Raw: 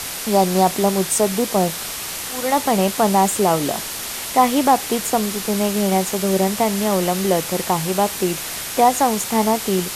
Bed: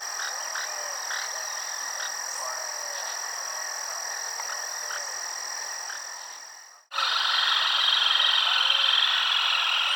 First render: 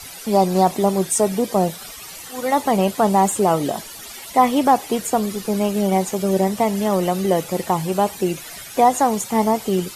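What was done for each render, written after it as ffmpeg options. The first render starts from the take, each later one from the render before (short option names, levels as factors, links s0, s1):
-af "afftdn=nr=14:nf=-29"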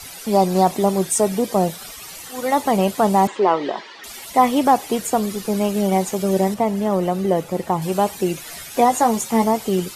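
-filter_complex "[0:a]asettb=1/sr,asplit=3[s0][s1][s2];[s0]atrim=end=3.274[s3];[s1]atrim=start=3.27:end=4.04,asetpts=PTS-STARTPTS,afade=t=in:d=0.004:c=qsin,afade=t=out:st=0.766:d=0.004:c=qsin,highpass=350,equalizer=f=380:t=q:w=4:g=5,equalizer=f=680:t=q:w=4:g=-3,equalizer=f=990:t=q:w=4:g=6,equalizer=f=1900:t=q:w=4:g=7,lowpass=f=4400:w=0.5412,lowpass=f=4400:w=1.3066[s4];[s2]atrim=start=4.036[s5];[s3][s4]acrossfade=d=0.004:c1=hsin:c2=qsin[s6];[s6][s5]acrossfade=d=0.004:c1=qsin:c2=hsin,asettb=1/sr,asplit=3[s7][s8][s9];[s7]atrim=end=6.544[s10];[s8]atrim=start=6.54:end=7.82,asetpts=PTS-STARTPTS,afade=t=in:d=0.004:c=qsin,afade=t=out:st=1.276:d=0.004:c=qsin,highshelf=f=2200:g=-9[s11];[s9]atrim=start=7.816[s12];[s10][s11]acrossfade=d=0.004:c1=hsin:c2=qsin[s13];[s13][s12]acrossfade=d=0.004:c1=qsin:c2=hsin,asettb=1/sr,asplit=3[s14][s15][s16];[s14]atrim=end=8.464[s17];[s15]atrim=start=8.46:end=9.44,asetpts=PTS-STARTPTS,afade=t=in:d=0.004:c=qsin,afade=t=out:st=0.976:d=0.004:c=qsin,asplit=2[s18][s19];[s19]adelay=13,volume=0.447[s20];[s18][s20]amix=inputs=2:normalize=0,atrim=end_sample=43218[s21];[s16]atrim=start=9.436[s22];[s17][s21]acrossfade=d=0.004:c1=hsin:c2=qsin[s23];[s23][s22]acrossfade=d=0.004:c1=qsin:c2=hsin"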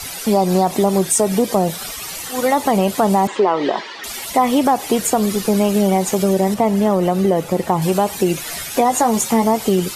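-filter_complex "[0:a]asplit=2[s0][s1];[s1]alimiter=limit=0.237:level=0:latency=1:release=64,volume=1.33[s2];[s0][s2]amix=inputs=2:normalize=0,acompressor=threshold=0.251:ratio=3"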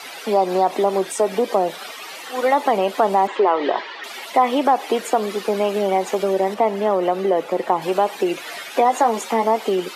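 -filter_complex "[0:a]highpass=160,acrossover=split=280 4000:gain=0.0631 1 0.178[s0][s1][s2];[s0][s1][s2]amix=inputs=3:normalize=0"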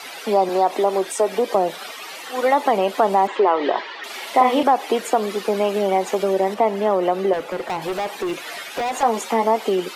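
-filter_complex "[0:a]asettb=1/sr,asplit=3[s0][s1][s2];[s0]atrim=end=0.494[s3];[s1]atrim=start=0.49:end=1.55,asetpts=PTS-STARTPTS,afade=t=in:d=0.004:c=qsin,afade=t=out:st=1.056:d=0.004:c=qsin,highpass=240[s4];[s2]atrim=start=1.546[s5];[s3][s4]acrossfade=d=0.004:c1=hsin:c2=qsin[s6];[s6][s5]acrossfade=d=0.004:c1=qsin:c2=hsin,asettb=1/sr,asplit=3[s7][s8][s9];[s7]atrim=end=4.054[s10];[s8]atrim=start=4.05:end=4.63,asetpts=PTS-STARTPTS,afade=t=in:d=0.004:c=qsin,afade=t=out:st=0.576:d=0.004:c=qsin,asplit=2[s11][s12];[s12]adelay=44,volume=0.631[s13];[s11][s13]amix=inputs=2:normalize=0,atrim=end_sample=25578[s14];[s9]atrim=start=4.626[s15];[s10][s14]acrossfade=d=0.004:c1=hsin:c2=qsin[s16];[s16][s15]acrossfade=d=0.004:c1=qsin:c2=hsin,asettb=1/sr,asplit=3[s17][s18][s19];[s17]atrim=end=7.334[s20];[s18]atrim=start=7.33:end=9.03,asetpts=PTS-STARTPTS,afade=t=in:d=0.004:c=qsin,afade=t=out:st=1.696:d=0.004:c=qsin,asoftclip=type=hard:threshold=0.0891[s21];[s19]atrim=start=9.026[s22];[s20][s21]acrossfade=d=0.004:c1=hsin:c2=qsin[s23];[s23][s22]acrossfade=d=0.004:c1=qsin:c2=hsin"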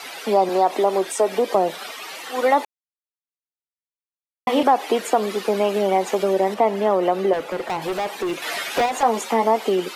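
-filter_complex "[0:a]asettb=1/sr,asplit=3[s0][s1][s2];[s0]atrim=end=8.424[s3];[s1]atrim=start=8.42:end=8.86,asetpts=PTS-STARTPTS,afade=t=in:d=0.004:c=qsin,afade=t=out:st=0.436:d=0.004:c=qsin,acontrast=29[s4];[s2]atrim=start=8.856[s5];[s3][s4]acrossfade=d=0.004:c1=hsin:c2=qsin[s6];[s6][s5]acrossfade=d=0.004:c1=qsin:c2=hsin,asplit=3[s7][s8][s9];[s7]atrim=end=2.65,asetpts=PTS-STARTPTS,afade=t=out:st=2.646:d=0.004:c=hsin[s10];[s8]atrim=start=2.65:end=4.47,asetpts=PTS-STARTPTS,volume=0[s11];[s9]atrim=start=4.47,asetpts=PTS-STARTPTS,afade=t=in:d=0.004:c=hsin[s12];[s10][s11][s12]concat=n=3:v=0:a=1"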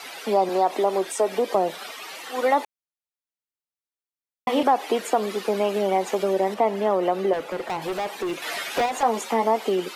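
-af "volume=0.708"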